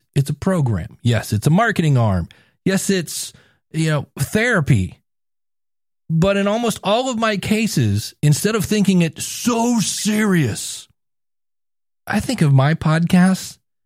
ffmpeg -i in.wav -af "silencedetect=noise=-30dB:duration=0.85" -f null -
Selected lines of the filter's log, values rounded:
silence_start: 4.92
silence_end: 6.10 | silence_duration: 1.18
silence_start: 10.81
silence_end: 12.07 | silence_duration: 1.26